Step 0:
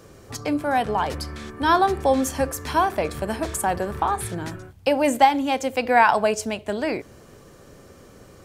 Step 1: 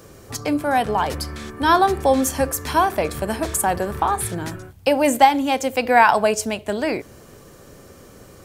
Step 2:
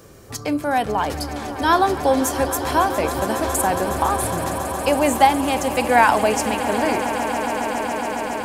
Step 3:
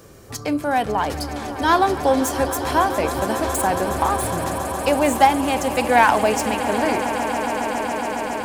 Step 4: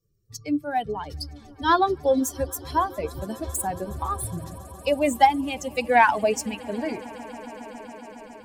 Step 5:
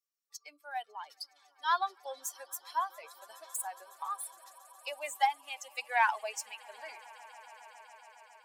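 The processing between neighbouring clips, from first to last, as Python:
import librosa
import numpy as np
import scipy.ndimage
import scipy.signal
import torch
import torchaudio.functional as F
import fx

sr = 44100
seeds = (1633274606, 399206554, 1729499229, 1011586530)

y1 = fx.high_shelf(x, sr, hz=10000.0, db=8.5)
y1 = F.gain(torch.from_numpy(y1), 2.5).numpy()
y2 = fx.echo_swell(y1, sr, ms=138, loudest=8, wet_db=-15.0)
y2 = F.gain(torch.from_numpy(y2), -1.0).numpy()
y3 = fx.self_delay(y2, sr, depth_ms=0.056)
y4 = fx.bin_expand(y3, sr, power=2.0)
y5 = scipy.signal.sosfilt(scipy.signal.butter(4, 820.0, 'highpass', fs=sr, output='sos'), y4)
y5 = F.gain(torch.from_numpy(y5), -8.0).numpy()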